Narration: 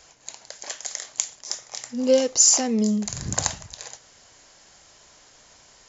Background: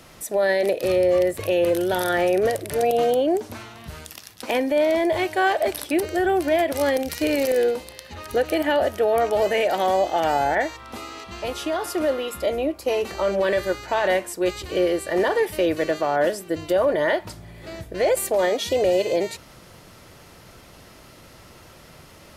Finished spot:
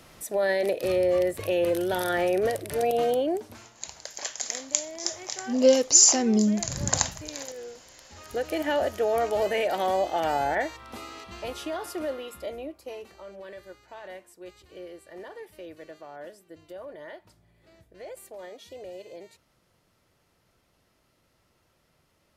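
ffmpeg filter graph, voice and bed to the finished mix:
ffmpeg -i stem1.wav -i stem2.wav -filter_complex "[0:a]adelay=3550,volume=0dB[link_01];[1:a]volume=11dB,afade=type=out:start_time=3.16:duration=0.65:silence=0.158489,afade=type=in:start_time=7.79:duration=0.97:silence=0.16788,afade=type=out:start_time=11.14:duration=2.09:silence=0.149624[link_02];[link_01][link_02]amix=inputs=2:normalize=0" out.wav

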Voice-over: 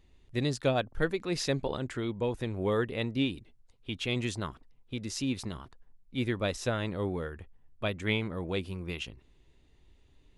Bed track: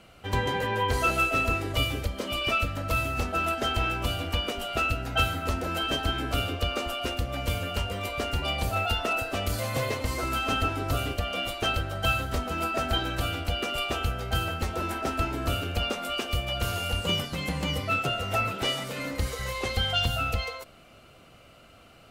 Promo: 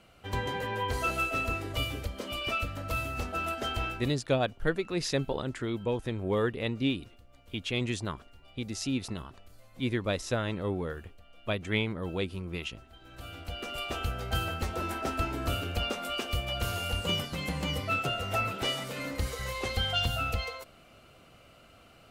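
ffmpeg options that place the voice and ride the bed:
ffmpeg -i stem1.wav -i stem2.wav -filter_complex "[0:a]adelay=3650,volume=0.5dB[link_01];[1:a]volume=20.5dB,afade=type=out:start_time=3.84:duration=0.32:silence=0.0668344,afade=type=in:start_time=12.99:duration=1.24:silence=0.0501187[link_02];[link_01][link_02]amix=inputs=2:normalize=0" out.wav

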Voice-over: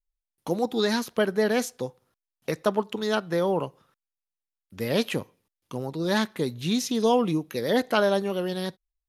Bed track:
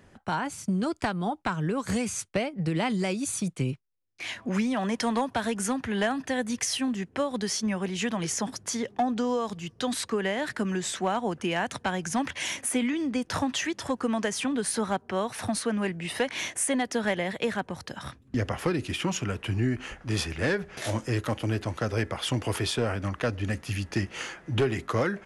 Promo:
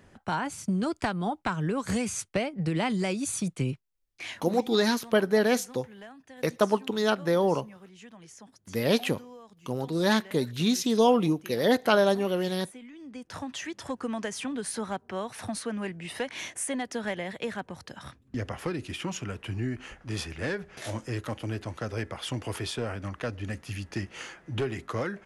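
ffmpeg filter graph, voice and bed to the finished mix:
ffmpeg -i stem1.wav -i stem2.wav -filter_complex "[0:a]adelay=3950,volume=0.5dB[link_01];[1:a]volume=14.5dB,afade=type=out:start_time=4.12:duration=0.53:silence=0.105925,afade=type=in:start_time=12.91:duration=0.98:silence=0.177828[link_02];[link_01][link_02]amix=inputs=2:normalize=0" out.wav

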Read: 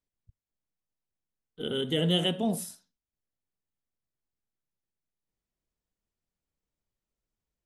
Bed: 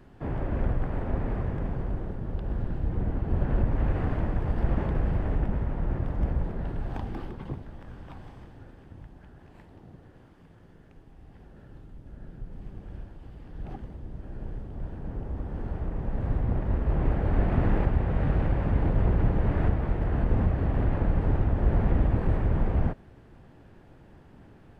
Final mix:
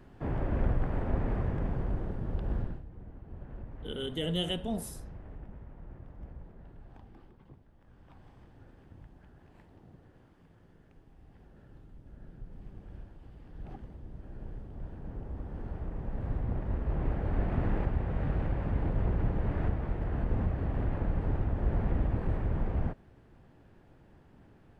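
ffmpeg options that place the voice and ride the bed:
ffmpeg -i stem1.wav -i stem2.wav -filter_complex "[0:a]adelay=2250,volume=-6dB[link_01];[1:a]volume=11.5dB,afade=type=out:start_time=2.56:duration=0.28:silence=0.133352,afade=type=in:start_time=7.75:duration=1.05:silence=0.223872[link_02];[link_01][link_02]amix=inputs=2:normalize=0" out.wav

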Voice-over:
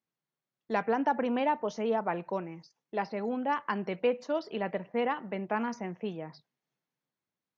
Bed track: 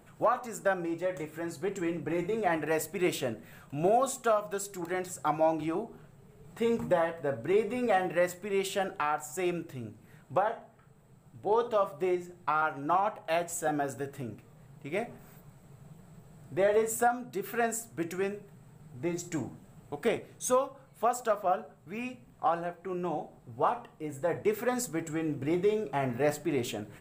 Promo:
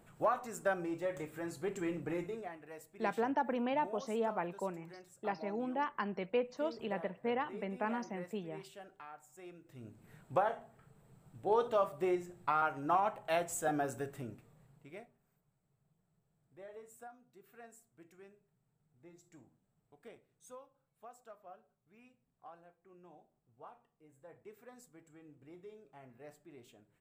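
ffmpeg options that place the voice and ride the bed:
ffmpeg -i stem1.wav -i stem2.wav -filter_complex "[0:a]adelay=2300,volume=-5.5dB[link_01];[1:a]volume=12.5dB,afade=type=out:start_time=2.07:duration=0.46:silence=0.158489,afade=type=in:start_time=9.62:duration=0.52:silence=0.133352,afade=type=out:start_time=14:duration=1.12:silence=0.0794328[link_02];[link_01][link_02]amix=inputs=2:normalize=0" out.wav

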